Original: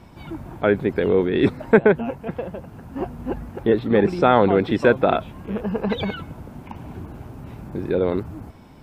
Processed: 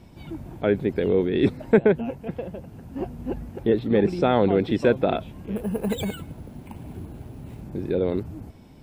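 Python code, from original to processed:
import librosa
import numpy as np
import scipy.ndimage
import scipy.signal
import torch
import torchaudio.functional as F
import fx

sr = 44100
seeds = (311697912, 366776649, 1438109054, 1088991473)

y = fx.peak_eq(x, sr, hz=1200.0, db=-8.5, octaves=1.4)
y = fx.resample_bad(y, sr, factor=4, down='none', up='hold', at=(5.56, 7.63))
y = F.gain(torch.from_numpy(y), -1.5).numpy()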